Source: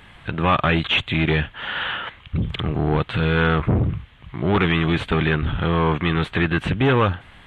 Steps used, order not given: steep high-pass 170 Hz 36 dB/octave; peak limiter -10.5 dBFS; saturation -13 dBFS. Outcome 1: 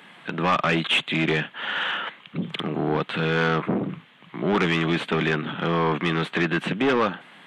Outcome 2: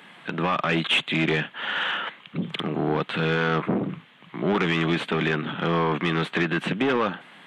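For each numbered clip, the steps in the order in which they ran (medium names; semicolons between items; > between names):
steep high-pass > saturation > peak limiter; steep high-pass > peak limiter > saturation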